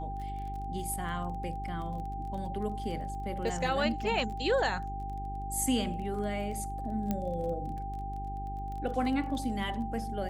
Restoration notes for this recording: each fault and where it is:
surface crackle 21 per second −39 dBFS
mains hum 50 Hz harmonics 8 −39 dBFS
whistle 790 Hz −38 dBFS
0:07.11: click −18 dBFS

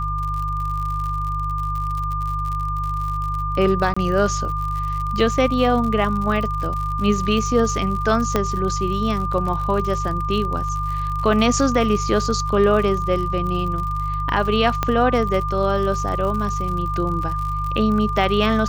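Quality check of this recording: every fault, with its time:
surface crackle 75 per second −27 dBFS
mains hum 50 Hz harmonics 3 −26 dBFS
whistle 1,200 Hz −24 dBFS
0:03.94–0:03.96: drop-out 25 ms
0:08.36: click −5 dBFS
0:14.83: click −6 dBFS

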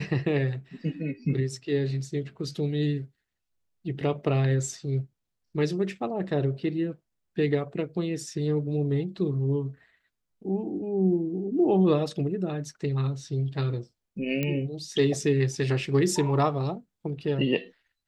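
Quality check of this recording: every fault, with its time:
0:14.43: click −15 dBFS

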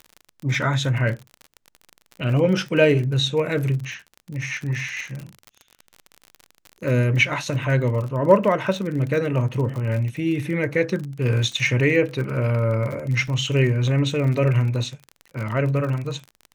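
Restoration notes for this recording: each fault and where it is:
surface crackle 46 per second −29 dBFS
0:13.28: drop-out 2.5 ms

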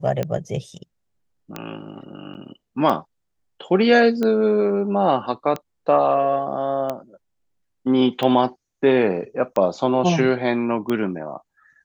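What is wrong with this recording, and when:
scratch tick 45 rpm −12 dBFS
0:02.34–0:02.35: drop-out 9 ms

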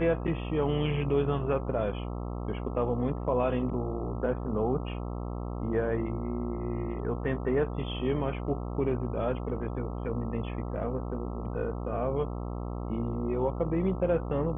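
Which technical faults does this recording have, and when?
mains buzz 60 Hz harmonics 22 −35 dBFS

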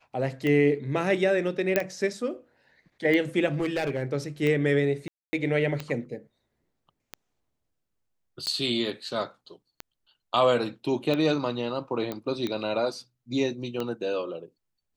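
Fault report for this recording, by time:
scratch tick 45 rpm −17 dBFS
0:01.76: click −8 dBFS
0:03.47–0:04.03: clipping −22.5 dBFS
0:05.08–0:05.33: drop-out 250 ms
0:08.46–0:08.47: drop-out 8.9 ms
0:12.12: click −18 dBFS

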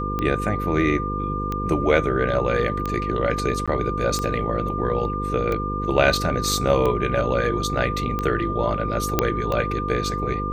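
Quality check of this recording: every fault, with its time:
mains buzz 50 Hz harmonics 10 −28 dBFS
scratch tick 45 rpm −13 dBFS
whistle 1,200 Hz −27 dBFS
0:03.66–0:03.68: drop-out 16 ms
0:09.19: click −3 dBFS

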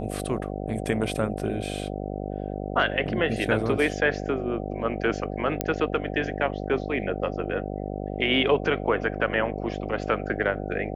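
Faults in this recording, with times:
mains buzz 50 Hz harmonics 15 −32 dBFS
0:05.61: click −7 dBFS

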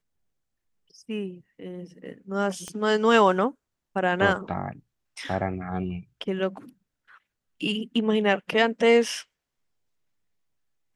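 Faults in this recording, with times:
0:02.68: click −22 dBFS

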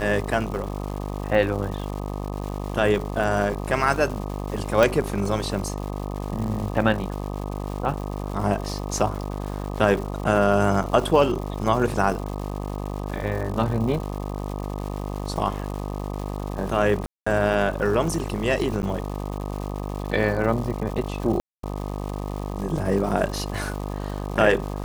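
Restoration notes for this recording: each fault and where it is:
mains buzz 50 Hz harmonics 25 −30 dBFS
surface crackle 300 per second −32 dBFS
0:04.83: click
0:17.06–0:17.27: drop-out 205 ms
0:18.82–0:18.83: drop-out 9.6 ms
0:21.40–0:21.63: drop-out 233 ms

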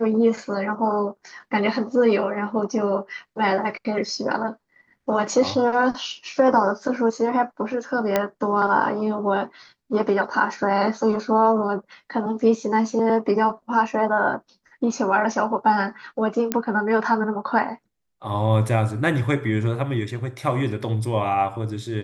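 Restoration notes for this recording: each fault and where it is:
0:08.16: click −6 dBFS
0:16.52: click −7 dBFS

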